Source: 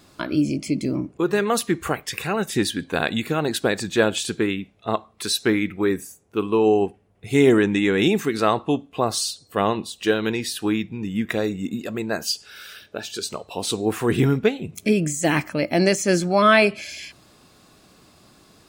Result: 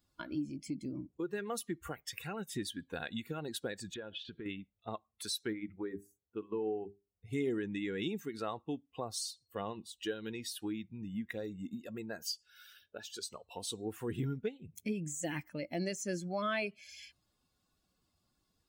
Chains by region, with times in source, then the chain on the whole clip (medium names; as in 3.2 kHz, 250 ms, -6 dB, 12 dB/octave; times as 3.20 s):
3.94–4.46 s: low-pass 3.9 kHz 24 dB/octave + compression 4:1, threshold -27 dBFS
5.53–7.33 s: treble shelf 2.7 kHz -9.5 dB + hum notches 50/100/150/200/250/300/350/400 Hz
whole clip: expander on every frequency bin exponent 1.5; dynamic bell 950 Hz, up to -4 dB, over -37 dBFS, Q 1.1; compression 2:1, threshold -36 dBFS; trim -5 dB